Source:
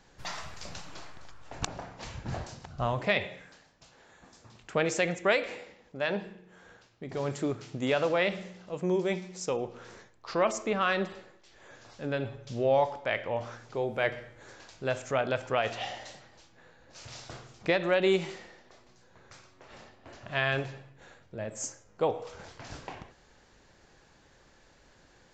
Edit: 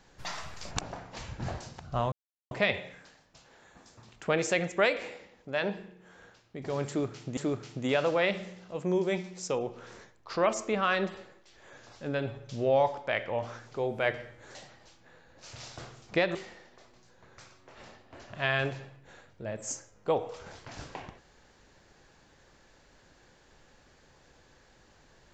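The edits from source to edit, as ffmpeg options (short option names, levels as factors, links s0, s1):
-filter_complex "[0:a]asplit=6[s0][s1][s2][s3][s4][s5];[s0]atrim=end=0.712[s6];[s1]atrim=start=1.568:end=2.98,asetpts=PTS-STARTPTS,afade=t=out:st=1.408:d=0.004:c=hsin,apad=pad_dur=0.39[s7];[s2]atrim=start=2.98:end=7.842,asetpts=PTS-STARTPTS,afade=t=in:d=0.004:c=hsin[s8];[s3]atrim=start=7.348:end=14.532[s9];[s4]atrim=start=16.068:end=17.872[s10];[s5]atrim=start=18.278[s11];[s7][s8]concat=n=2:v=0:a=1[s12];[s6][s12]acrossfade=d=0.004:c1=hsin:c2=hsin[s13];[s13][s9]acrossfade=d=0.004:c1=hsin:c2=hsin[s14];[s14][s10]acrossfade=d=0.004:c1=hsin:c2=hsin[s15];[s15][s11]acrossfade=d=0.004:c1=hsin:c2=hsin"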